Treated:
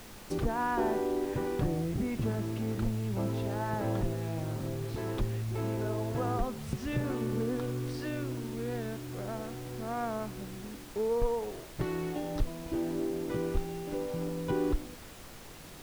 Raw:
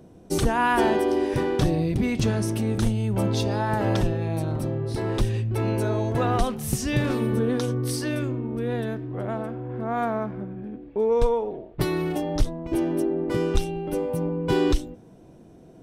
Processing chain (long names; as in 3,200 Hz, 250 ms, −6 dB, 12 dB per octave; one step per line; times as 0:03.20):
treble cut that deepens with the level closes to 1,500 Hz, closed at −19 dBFS
background noise pink −40 dBFS
level −8.5 dB